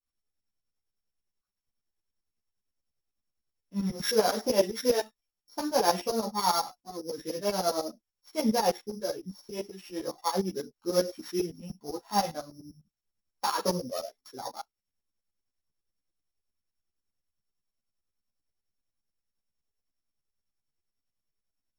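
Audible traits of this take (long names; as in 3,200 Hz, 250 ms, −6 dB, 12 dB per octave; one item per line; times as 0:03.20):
a buzz of ramps at a fixed pitch in blocks of 8 samples
tremolo saw up 10 Hz, depth 90%
a shimmering, thickened sound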